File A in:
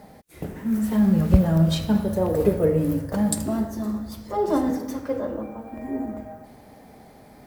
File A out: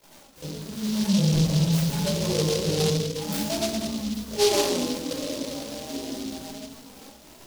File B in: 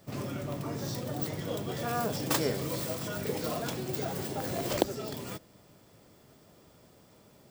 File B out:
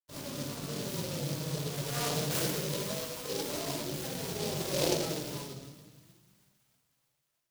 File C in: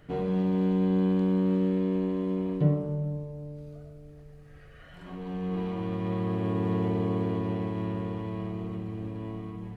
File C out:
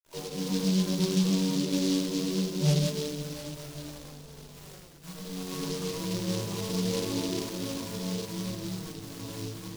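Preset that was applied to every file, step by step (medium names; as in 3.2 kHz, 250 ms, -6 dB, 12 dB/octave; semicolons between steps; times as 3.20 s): random holes in the spectrogram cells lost 31%; peaking EQ 290 Hz -2 dB 1.1 oct; band-stop 730 Hz, Q 12; chorus voices 2, 0.54 Hz, delay 17 ms, depth 3.4 ms; word length cut 8-bit, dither none; gate -52 dBFS, range -7 dB; feedback echo behind a high-pass 317 ms, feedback 63%, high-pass 2.3 kHz, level -16.5 dB; simulated room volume 960 m³, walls mixed, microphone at 5 m; saturation -9 dBFS; bass shelf 170 Hz -10 dB; flange 0.27 Hz, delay 2.9 ms, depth 4.4 ms, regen +34%; delay time shaken by noise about 4.3 kHz, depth 0.16 ms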